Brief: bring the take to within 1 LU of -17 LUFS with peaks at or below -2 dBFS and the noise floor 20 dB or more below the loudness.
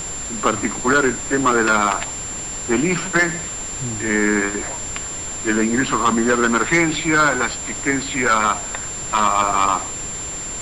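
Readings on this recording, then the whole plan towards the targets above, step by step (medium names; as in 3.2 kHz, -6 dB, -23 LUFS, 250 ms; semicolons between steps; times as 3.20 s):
steady tone 7.3 kHz; tone level -27 dBFS; noise floor -29 dBFS; noise floor target -39 dBFS; loudness -19.0 LUFS; peak level -7.0 dBFS; loudness target -17.0 LUFS
-> band-stop 7.3 kHz, Q 30; noise print and reduce 10 dB; trim +2 dB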